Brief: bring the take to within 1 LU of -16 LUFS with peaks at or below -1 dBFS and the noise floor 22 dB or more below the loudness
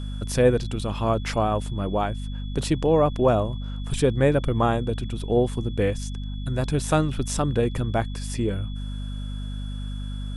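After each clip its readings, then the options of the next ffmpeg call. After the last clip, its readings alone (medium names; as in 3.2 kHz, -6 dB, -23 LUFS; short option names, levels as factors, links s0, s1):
hum 50 Hz; highest harmonic 250 Hz; hum level -28 dBFS; steady tone 3.4 kHz; tone level -46 dBFS; loudness -25.0 LUFS; peak level -7.0 dBFS; loudness target -16.0 LUFS
-> -af "bandreject=f=50:t=h:w=6,bandreject=f=100:t=h:w=6,bandreject=f=150:t=h:w=6,bandreject=f=200:t=h:w=6,bandreject=f=250:t=h:w=6"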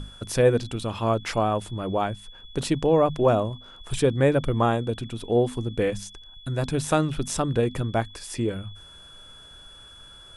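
hum not found; steady tone 3.4 kHz; tone level -46 dBFS
-> -af "bandreject=f=3400:w=30"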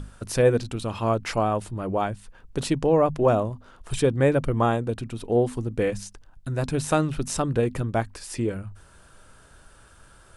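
steady tone not found; loudness -25.0 LUFS; peak level -7.5 dBFS; loudness target -16.0 LUFS
-> -af "volume=2.82,alimiter=limit=0.891:level=0:latency=1"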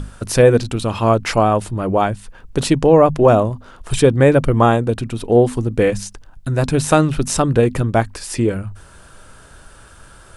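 loudness -16.0 LUFS; peak level -1.0 dBFS; noise floor -44 dBFS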